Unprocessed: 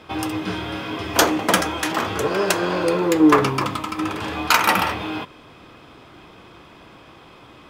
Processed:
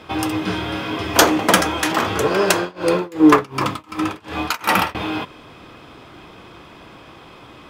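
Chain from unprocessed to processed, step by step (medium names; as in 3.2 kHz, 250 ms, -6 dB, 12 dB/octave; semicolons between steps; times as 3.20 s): 2.55–4.95 s: tremolo 2.7 Hz, depth 96%; trim +3.5 dB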